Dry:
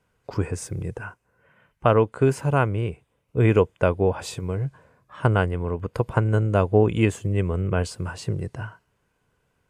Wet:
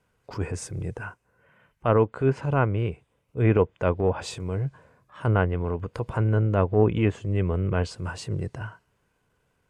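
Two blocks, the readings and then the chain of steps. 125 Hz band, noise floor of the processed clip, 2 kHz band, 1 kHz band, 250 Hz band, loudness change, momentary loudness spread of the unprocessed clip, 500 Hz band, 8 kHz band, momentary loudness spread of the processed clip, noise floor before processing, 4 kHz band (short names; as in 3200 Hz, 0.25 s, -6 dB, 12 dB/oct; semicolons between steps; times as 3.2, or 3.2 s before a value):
-1.5 dB, -72 dBFS, -3.0 dB, -3.0 dB, -2.0 dB, -2.0 dB, 13 LU, -2.5 dB, -3.5 dB, 13 LU, -72 dBFS, -3.0 dB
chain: transient shaper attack -8 dB, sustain 0 dB; treble ducked by the level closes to 2300 Hz, closed at -17 dBFS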